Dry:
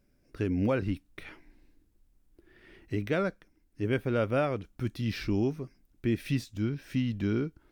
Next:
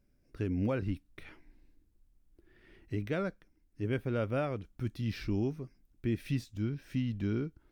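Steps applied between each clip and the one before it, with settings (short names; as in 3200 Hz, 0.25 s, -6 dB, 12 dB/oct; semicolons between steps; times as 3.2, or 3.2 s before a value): low shelf 180 Hz +5.5 dB; gain -6 dB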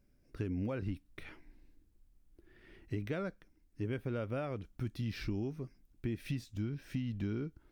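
compressor, threshold -34 dBFS, peak gain reduction 7.5 dB; gain +1 dB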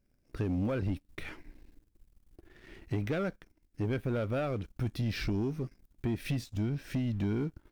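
sample leveller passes 2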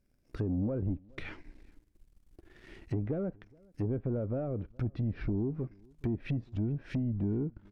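treble ducked by the level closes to 580 Hz, closed at -29 dBFS; outdoor echo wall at 72 m, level -27 dB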